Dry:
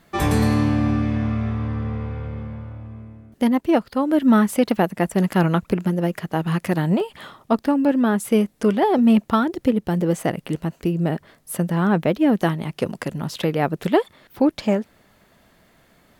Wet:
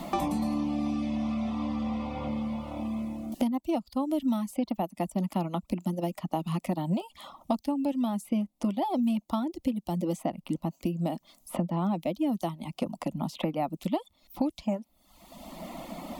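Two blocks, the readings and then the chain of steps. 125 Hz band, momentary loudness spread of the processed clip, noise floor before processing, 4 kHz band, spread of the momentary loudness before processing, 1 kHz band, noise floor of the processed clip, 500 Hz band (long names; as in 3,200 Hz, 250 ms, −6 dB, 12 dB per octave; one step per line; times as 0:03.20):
−12.0 dB, 7 LU, −59 dBFS, −9.5 dB, 12 LU, −8.5 dB, −69 dBFS, −12.0 dB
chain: reverb reduction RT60 0.65 s
phaser with its sweep stopped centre 430 Hz, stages 6
multiband upward and downward compressor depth 100%
level −7.5 dB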